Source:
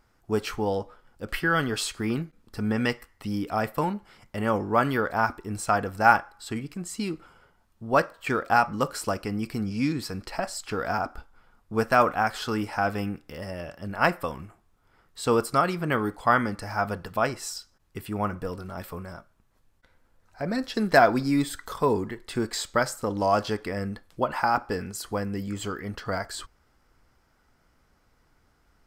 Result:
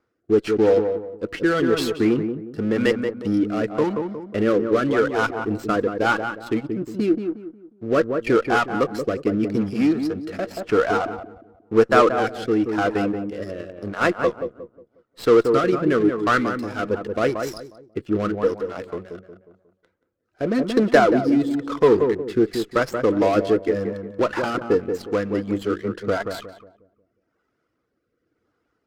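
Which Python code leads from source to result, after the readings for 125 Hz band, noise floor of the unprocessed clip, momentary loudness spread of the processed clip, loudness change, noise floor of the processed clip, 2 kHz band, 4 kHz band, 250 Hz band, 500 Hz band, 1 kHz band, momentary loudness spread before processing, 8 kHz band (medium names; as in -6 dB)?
+1.5 dB, -66 dBFS, 13 LU, +5.5 dB, -74 dBFS, +1.5 dB, +1.5 dB, +8.0 dB, +8.5 dB, 0.0 dB, 14 LU, no reading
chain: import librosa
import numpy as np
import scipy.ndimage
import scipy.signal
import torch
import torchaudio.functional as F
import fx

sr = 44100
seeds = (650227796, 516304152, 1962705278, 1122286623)

p1 = fx.dereverb_blind(x, sr, rt60_s=1.3)
p2 = fx.high_shelf(p1, sr, hz=4100.0, db=-8.0)
p3 = fx.leveller(p2, sr, passes=2)
p4 = 10.0 ** (-19.5 / 20.0) * (np.abs((p3 / 10.0 ** (-19.5 / 20.0) + 3.0) % 4.0 - 2.0) - 1.0)
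p5 = p3 + (p4 * librosa.db_to_amplitude(-6.0))
p6 = fx.cabinet(p5, sr, low_hz=120.0, low_slope=12, high_hz=7600.0, hz=(170.0, 330.0, 470.0, 860.0, 1300.0), db=(-5, 8, 7, -6, 3))
p7 = p6 + fx.echo_filtered(p6, sr, ms=180, feedback_pct=38, hz=1100.0, wet_db=-5.5, dry=0)
p8 = fx.rotary(p7, sr, hz=0.9)
p9 = fx.running_max(p8, sr, window=3)
y = p9 * librosa.db_to_amplitude(-2.0)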